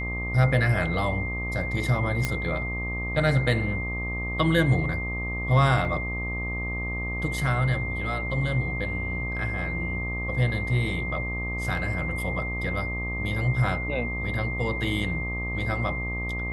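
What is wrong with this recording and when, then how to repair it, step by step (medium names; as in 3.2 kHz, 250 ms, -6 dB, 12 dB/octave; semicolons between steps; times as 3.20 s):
buzz 60 Hz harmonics 21 -32 dBFS
whine 2.1 kHz -31 dBFS
2.25 s: pop -10 dBFS
5.85 s: dropout 2.2 ms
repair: de-click; de-hum 60 Hz, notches 21; band-stop 2.1 kHz, Q 30; interpolate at 5.85 s, 2.2 ms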